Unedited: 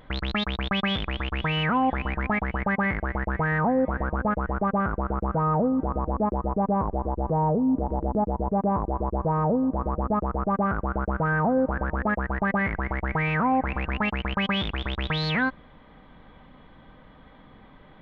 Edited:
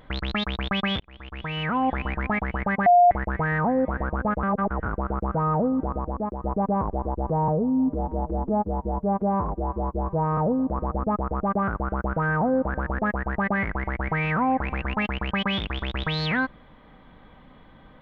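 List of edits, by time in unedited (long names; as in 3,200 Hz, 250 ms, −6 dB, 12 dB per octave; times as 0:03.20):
0:01.00–0:01.90: fade in
0:02.86–0:03.11: beep over 707 Hz −11.5 dBFS
0:04.43–0:04.86: reverse
0:05.80–0:06.41: fade out linear, to −6.5 dB
0:07.48–0:09.41: time-stretch 1.5×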